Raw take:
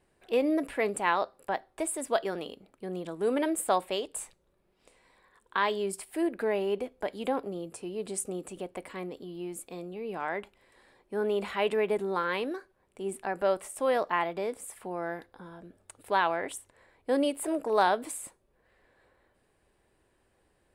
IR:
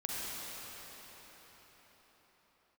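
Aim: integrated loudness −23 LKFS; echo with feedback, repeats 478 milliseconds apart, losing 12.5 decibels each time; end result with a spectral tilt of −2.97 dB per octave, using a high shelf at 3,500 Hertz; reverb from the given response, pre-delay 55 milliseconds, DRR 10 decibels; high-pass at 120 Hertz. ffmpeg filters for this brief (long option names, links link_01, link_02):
-filter_complex "[0:a]highpass=120,highshelf=frequency=3500:gain=4,aecho=1:1:478|956|1434:0.237|0.0569|0.0137,asplit=2[link_01][link_02];[1:a]atrim=start_sample=2205,adelay=55[link_03];[link_02][link_03]afir=irnorm=-1:irlink=0,volume=-14.5dB[link_04];[link_01][link_04]amix=inputs=2:normalize=0,volume=7.5dB"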